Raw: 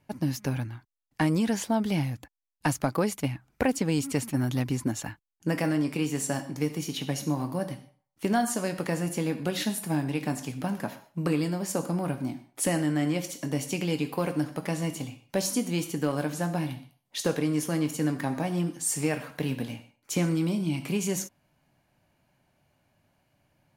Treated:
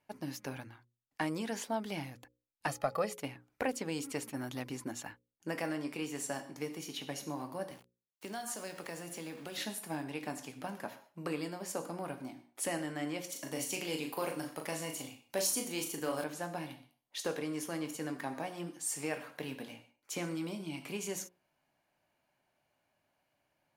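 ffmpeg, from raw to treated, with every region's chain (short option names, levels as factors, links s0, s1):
-filter_complex "[0:a]asettb=1/sr,asplit=3[s0][s1][s2];[s0]atrim=end=2.674[s3];[s1]atrim=start=2.67:end=3.13,asetpts=PTS-STARTPTS,afade=t=in:d=0.004:c=qsin,afade=t=out:st=0.456:d=0.004:c=qsin,highshelf=f=5100:g=-5,aecho=1:1:1.6:0.76,atrim=end_sample=20286,aeval=exprs='val(0)+0.00178*sin(2*PI*840*n/s)':c=same[s4];[s2]atrim=start=3.126[s5];[s3][s4]acrossfade=d=0.004:c1=hsin:c2=qsin[s6];[s6][s5]acrossfade=d=0.004:c1=qsin:c2=hsin,asettb=1/sr,asplit=3[s7][s8][s9];[s7]atrim=end=7.714[s10];[s8]atrim=start=7.71:end=9.58,asetpts=PTS-STARTPTS,afade=t=in:d=0.004:c=qsin,afade=t=out:st=1.866:d=0.004:c=qsin,equalizer=f=70:w=2.3:g=-7,acrossover=split=130|3000[s11][s12][s13];[s12]acompressor=threshold=0.0224:ratio=2.5:attack=3.2:release=140:knee=2.83:detection=peak[s14];[s11][s14][s13]amix=inputs=3:normalize=0,aeval=exprs='val(0)*gte(abs(val(0)),0.00596)':c=same[s15];[s9]atrim=start=9.576[s16];[s10][s15]acrossfade=d=0.004:c1=hsin:c2=qsin[s17];[s17][s16]acrossfade=d=0.004:c1=qsin:c2=hsin,asettb=1/sr,asplit=3[s18][s19][s20];[s18]atrim=end=13.324[s21];[s19]atrim=start=13.32:end=16.24,asetpts=PTS-STARTPTS,afade=t=in:d=0.004:c=qsin,afade=t=out:st=2.916:d=0.004:c=qsin,highshelf=f=5700:g=9,asplit=2[s22][s23];[s23]adelay=38,volume=0.531[s24];[s22][s24]amix=inputs=2:normalize=0,atrim=end_sample=128772[s25];[s20]atrim=start=16.236[s26];[s21][s25]acrossfade=d=0.004:c1=hsin:c2=qsin[s27];[s27][s26]acrossfade=d=0.004:c1=qsin:c2=hsin,bass=f=250:g=-12,treble=f=4000:g=-2,bandreject=f=60:t=h:w=6,bandreject=f=120:t=h:w=6,bandreject=f=180:t=h:w=6,bandreject=f=240:t=h:w=6,bandreject=f=300:t=h:w=6,bandreject=f=360:t=h:w=6,bandreject=f=420:t=h:w=6,bandreject=f=480:t=h:w=6,bandreject=f=540:t=h:w=6,volume=0.501"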